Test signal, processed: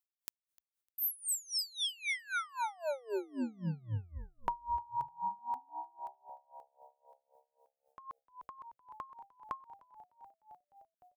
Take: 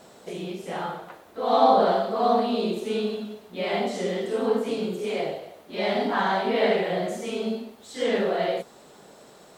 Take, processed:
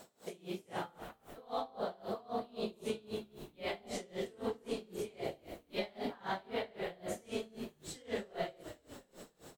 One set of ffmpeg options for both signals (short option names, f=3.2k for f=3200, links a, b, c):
-filter_complex "[0:a]highshelf=f=8.2k:g=9,acompressor=threshold=-27dB:ratio=6,asplit=8[a][b][c][d][e][f][g][h];[b]adelay=302,afreqshift=-69,volume=-13.5dB[i];[c]adelay=604,afreqshift=-138,volume=-17.7dB[j];[d]adelay=906,afreqshift=-207,volume=-21.8dB[k];[e]adelay=1208,afreqshift=-276,volume=-26dB[l];[f]adelay=1510,afreqshift=-345,volume=-30.1dB[m];[g]adelay=1812,afreqshift=-414,volume=-34.3dB[n];[h]adelay=2114,afreqshift=-483,volume=-38.4dB[o];[a][i][j][k][l][m][n][o]amix=inputs=8:normalize=0,aeval=exprs='val(0)*pow(10,-26*(0.5-0.5*cos(2*PI*3.8*n/s))/20)':c=same,volume=-4dB"